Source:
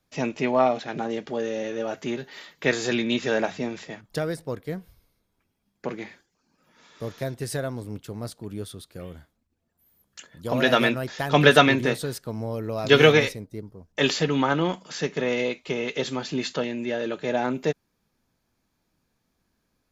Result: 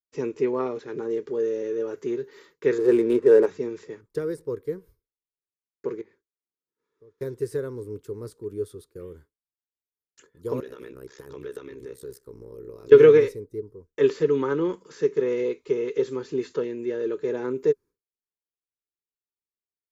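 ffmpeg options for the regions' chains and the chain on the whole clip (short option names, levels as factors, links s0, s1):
-filter_complex "[0:a]asettb=1/sr,asplit=3[s0][s1][s2];[s0]atrim=end=2.784[s3];[s1]atrim=start=2.78:end=3.46,asetpts=PTS-STARTPTS,afade=t=in:d=0.004:c=qsin,afade=t=out:st=0.676:d=0.004:c=qsin,equalizer=f=520:w=0.7:g=8,adynamicsmooth=sensitivity=3:basefreq=690[s4];[s2]atrim=start=3.456[s5];[s3][s4]acrossfade=d=0.004:c1=hsin:c2=qsin[s6];[s6][s5]acrossfade=d=0.004:c1=qsin:c2=hsin,asettb=1/sr,asplit=3[s7][s8][s9];[s7]atrim=end=6.014[s10];[s8]atrim=start=6.01:end=7.21,asetpts=PTS-STARTPTS,afade=t=in:d=0.004:c=qsin,afade=t=out:st=1.196:d=0.004:c=qsin,highshelf=f=5500:g=-12,acompressor=threshold=0.00251:ratio=3:attack=3.2:release=140:knee=1:detection=peak[s11];[s9]atrim=start=7.206[s12];[s10][s11]acrossfade=d=0.004:c1=hsin:c2=qsin[s13];[s13][s12]acrossfade=d=0.004:c1=qsin:c2=hsin,asettb=1/sr,asplit=3[s14][s15][s16];[s14]atrim=end=10.604[s17];[s15]atrim=start=10.6:end=12.92,asetpts=PTS-STARTPTS,afade=t=in:d=0.004:c=qsin,afade=t=out:st=2.316:d=0.004:c=qsin,acompressor=threshold=0.02:ratio=4:attack=3.2:release=140:knee=1:detection=peak,highshelf=f=6300:g=7.5,tremolo=f=65:d=0.974[s18];[s16]atrim=start=12.916[s19];[s17][s18]acrossfade=d=0.004:c1=hsin:c2=qsin[s20];[s20][s19]acrossfade=d=0.004:c1=qsin:c2=hsin,agate=range=0.0224:threshold=0.00631:ratio=3:detection=peak,acrossover=split=3300[s21][s22];[s22]acompressor=threshold=0.0141:ratio=4:attack=1:release=60[s23];[s21][s23]amix=inputs=2:normalize=0,firequalizer=gain_entry='entry(110,0);entry(210,-6);entry(420,14);entry(680,-18);entry(970,-1);entry(1600,-4);entry(3000,-11);entry(5000,-6);entry(7900,-2)':delay=0.05:min_phase=1,volume=0.596"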